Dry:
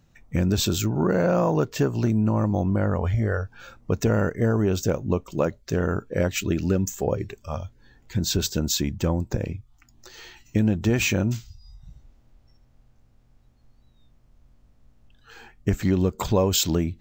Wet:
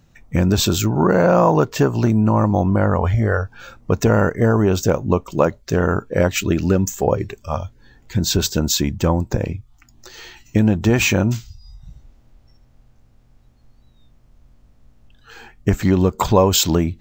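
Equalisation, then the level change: dynamic bell 960 Hz, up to +6 dB, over -40 dBFS, Q 1.3; +5.5 dB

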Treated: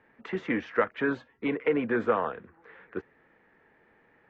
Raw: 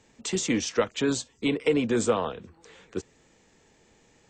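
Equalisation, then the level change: four-pole ladder low-pass 2 kHz, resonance 50%; bass shelf 140 Hz -10.5 dB; +8.0 dB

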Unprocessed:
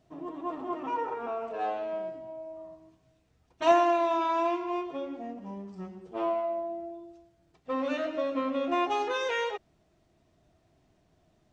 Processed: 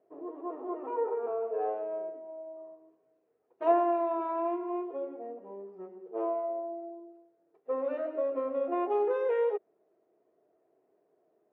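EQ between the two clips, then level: resonant high-pass 430 Hz, resonance Q 4.9; distance through air 370 m; peaking EQ 3.6 kHz -12 dB 1.3 oct; -5.0 dB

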